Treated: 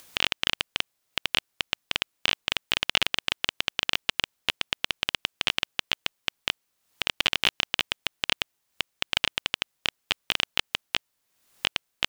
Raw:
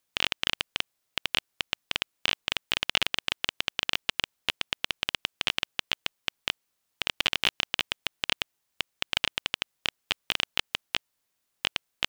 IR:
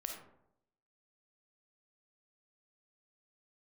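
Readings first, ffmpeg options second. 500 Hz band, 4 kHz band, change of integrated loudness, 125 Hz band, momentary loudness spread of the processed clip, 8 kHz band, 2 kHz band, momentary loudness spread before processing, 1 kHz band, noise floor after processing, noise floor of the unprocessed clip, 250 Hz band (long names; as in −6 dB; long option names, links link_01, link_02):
+2.0 dB, +2.0 dB, +2.0 dB, +2.0 dB, 7 LU, +2.0 dB, +2.0 dB, 7 LU, +2.0 dB, −77 dBFS, −79 dBFS, +2.0 dB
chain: -af "acompressor=mode=upward:threshold=-37dB:ratio=2.5,volume=2dB"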